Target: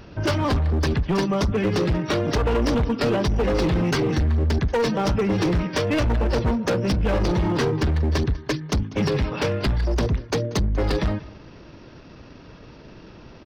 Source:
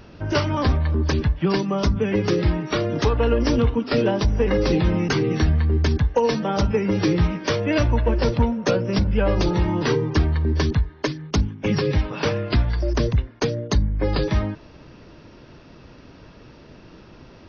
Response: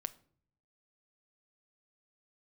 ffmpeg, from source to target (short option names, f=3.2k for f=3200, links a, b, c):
-af "aecho=1:1:252:0.075,atempo=1.3,volume=19dB,asoftclip=hard,volume=-19dB,volume=1.5dB"